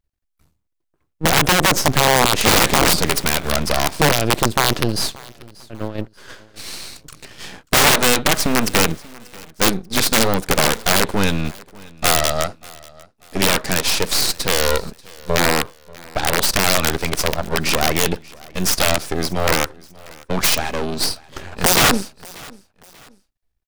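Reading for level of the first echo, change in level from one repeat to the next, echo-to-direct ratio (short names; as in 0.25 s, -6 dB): -23.0 dB, -9.0 dB, -22.5 dB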